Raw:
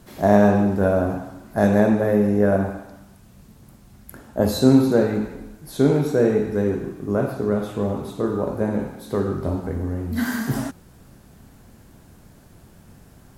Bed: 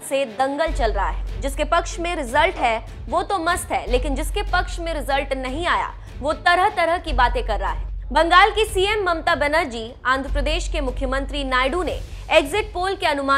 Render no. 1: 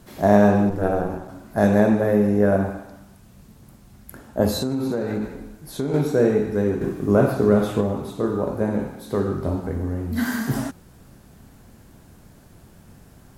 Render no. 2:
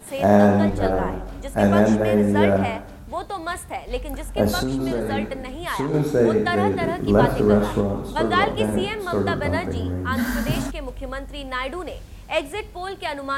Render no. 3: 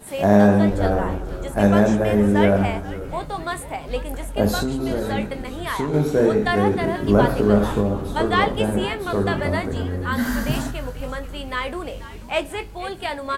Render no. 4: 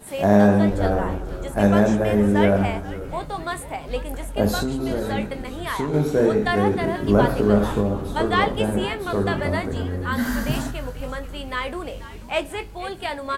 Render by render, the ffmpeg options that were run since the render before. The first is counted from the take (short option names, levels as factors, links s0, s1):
-filter_complex "[0:a]asplit=3[s0][s1][s2];[s0]afade=t=out:st=0.69:d=0.02[s3];[s1]aeval=exprs='val(0)*sin(2*PI*100*n/s)':c=same,afade=t=in:st=0.69:d=0.02,afade=t=out:st=1.27:d=0.02[s4];[s2]afade=t=in:st=1.27:d=0.02[s5];[s3][s4][s5]amix=inputs=3:normalize=0,asettb=1/sr,asplit=3[s6][s7][s8];[s6]atrim=end=4.584[s9];[s7]atrim=start=4.58:end=5.94,asetpts=PTS-STARTPTS,afade=t=in:d=0.004:c=qsin,afade=t=out:st=1.356:d=0.004:c=qsin,acompressor=threshold=0.1:ratio=8:attack=3.2:release=140:knee=1:detection=peak[s10];[s8]atrim=start=5.936[s11];[s9][s10]acrossfade=d=0.004:c1=hsin:c2=qsin[s12];[s12][s11]acrossfade=d=0.004:c1=qsin:c2=hsin,asettb=1/sr,asplit=3[s13][s14][s15];[s13]atrim=end=6.814[s16];[s14]atrim=start=6.81:end=7.81,asetpts=PTS-STARTPTS,afade=t=in:d=0.004:c=qsin,afade=t=out:st=0.996:d=0.004:c=qsin,acontrast=39[s17];[s15]atrim=start=7.806[s18];[s16][s17]acrossfade=d=0.004:c1=hsin:c2=qsin[s19];[s19][s18]acrossfade=d=0.004:c1=qsin:c2=hsin"
-filter_complex "[1:a]volume=0.398[s0];[0:a][s0]amix=inputs=2:normalize=0"
-filter_complex "[0:a]asplit=2[s0][s1];[s1]adelay=20,volume=0.299[s2];[s0][s2]amix=inputs=2:normalize=0,asplit=6[s3][s4][s5][s6][s7][s8];[s4]adelay=486,afreqshift=-120,volume=0.178[s9];[s5]adelay=972,afreqshift=-240,volume=0.0912[s10];[s6]adelay=1458,afreqshift=-360,volume=0.0462[s11];[s7]adelay=1944,afreqshift=-480,volume=0.0237[s12];[s8]adelay=2430,afreqshift=-600,volume=0.012[s13];[s3][s9][s10][s11][s12][s13]amix=inputs=6:normalize=0"
-af "volume=0.891"